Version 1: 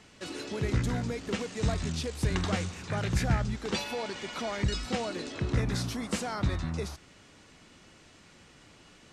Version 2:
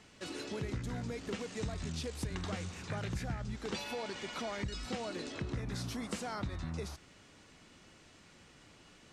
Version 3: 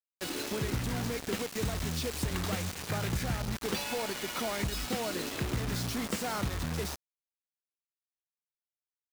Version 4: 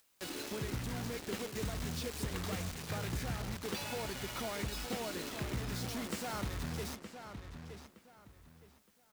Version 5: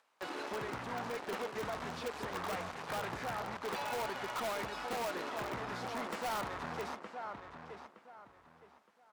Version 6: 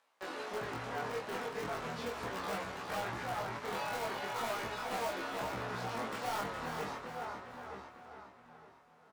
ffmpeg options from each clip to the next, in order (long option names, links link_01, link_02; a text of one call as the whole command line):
ffmpeg -i in.wav -af "acompressor=threshold=-31dB:ratio=6,volume=-3.5dB" out.wav
ffmpeg -i in.wav -af "acrusher=bits=6:mix=0:aa=0.000001,volume=5dB" out.wav
ffmpeg -i in.wav -filter_complex "[0:a]acompressor=mode=upward:threshold=-41dB:ratio=2.5,asplit=2[link_01][link_02];[link_02]adelay=917,lowpass=frequency=4000:poles=1,volume=-8.5dB,asplit=2[link_03][link_04];[link_04]adelay=917,lowpass=frequency=4000:poles=1,volume=0.27,asplit=2[link_05][link_06];[link_06]adelay=917,lowpass=frequency=4000:poles=1,volume=0.27[link_07];[link_01][link_03][link_05][link_07]amix=inputs=4:normalize=0,volume=-6dB" out.wav
ffmpeg -i in.wav -filter_complex "[0:a]bandpass=frequency=940:width_type=q:width=1.3:csg=0,asplit=2[link_01][link_02];[link_02]aeval=exprs='(mod(100*val(0)+1,2)-1)/100':channel_layout=same,volume=-4dB[link_03];[link_01][link_03]amix=inputs=2:normalize=0,volume=5.5dB" out.wav
ffmpeg -i in.wav -filter_complex "[0:a]asplit=2[link_01][link_02];[link_02]adelay=26,volume=-3dB[link_03];[link_01][link_03]amix=inputs=2:normalize=0,asplit=2[link_04][link_05];[link_05]aecho=0:1:413|826|1239|1652:0.422|0.164|0.0641|0.025[link_06];[link_04][link_06]amix=inputs=2:normalize=0,flanger=delay=15:depth=4.8:speed=0.38,volume=1dB" out.wav